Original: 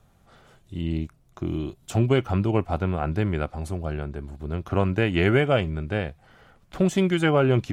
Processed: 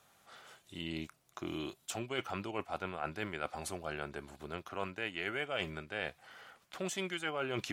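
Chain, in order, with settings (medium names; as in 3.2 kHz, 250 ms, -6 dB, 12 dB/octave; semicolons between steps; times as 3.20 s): high-pass 1.4 kHz 6 dB/octave; reverse; compression 6:1, threshold -38 dBFS, peak gain reduction 14.5 dB; reverse; trim +4 dB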